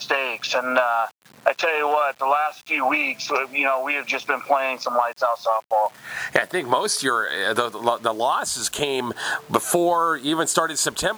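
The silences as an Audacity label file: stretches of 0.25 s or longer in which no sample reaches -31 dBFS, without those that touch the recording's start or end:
1.090000	1.460000	silence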